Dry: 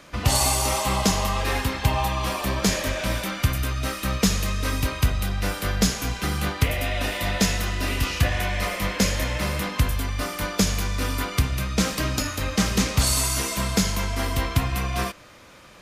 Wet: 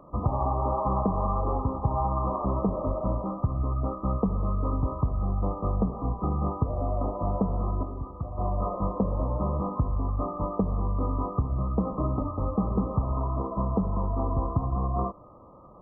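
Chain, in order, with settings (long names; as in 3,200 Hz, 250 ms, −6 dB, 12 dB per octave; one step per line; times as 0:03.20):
linear-phase brick-wall low-pass 1,300 Hz
downward compressor 6 to 1, threshold −21 dBFS, peak gain reduction 7.5 dB
0:07.83–0:08.38: tuned comb filter 380 Hz, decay 0.59 s, mix 60%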